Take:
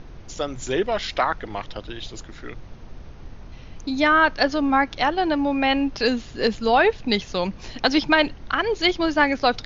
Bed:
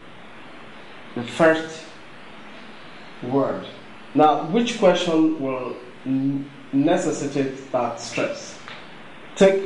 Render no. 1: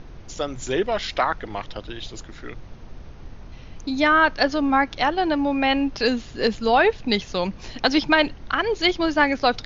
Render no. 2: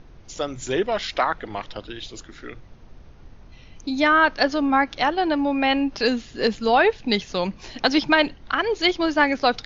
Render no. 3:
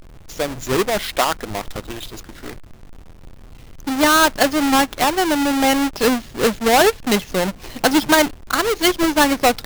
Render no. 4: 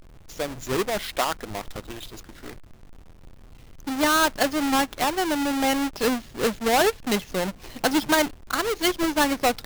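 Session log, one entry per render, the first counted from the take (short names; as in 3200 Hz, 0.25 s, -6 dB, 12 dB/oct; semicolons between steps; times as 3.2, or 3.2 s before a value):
nothing audible
noise print and reduce 6 dB
half-waves squared off
gain -6.5 dB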